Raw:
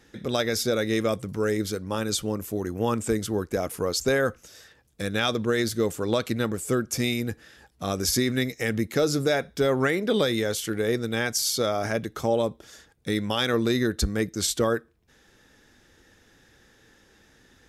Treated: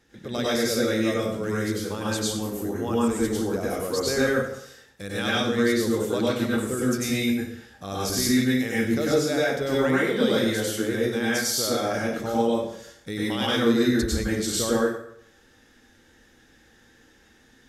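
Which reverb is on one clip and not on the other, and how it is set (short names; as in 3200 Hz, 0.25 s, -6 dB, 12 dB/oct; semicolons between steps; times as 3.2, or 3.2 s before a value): plate-style reverb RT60 0.68 s, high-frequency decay 0.85×, pre-delay 85 ms, DRR -6.5 dB; gain -6.5 dB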